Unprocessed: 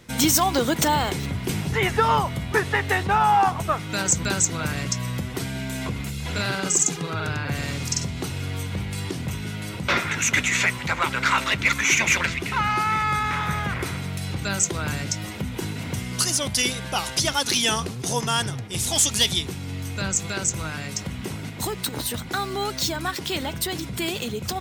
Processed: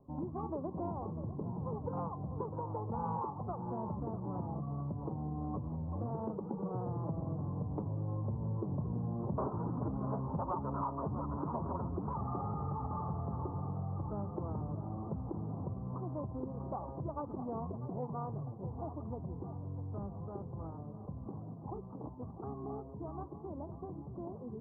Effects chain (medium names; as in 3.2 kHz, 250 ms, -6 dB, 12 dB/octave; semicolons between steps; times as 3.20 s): Doppler pass-by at 9.84 s, 19 m/s, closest 23 m; steep low-pass 1.1 kHz 72 dB/octave; on a send: two-band feedback delay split 380 Hz, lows 227 ms, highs 646 ms, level -13.5 dB; on the sum: compression 4:1, threshold -43 dBFS, peak gain reduction 17 dB; formant-preserving pitch shift +1.5 st; trim +7.5 dB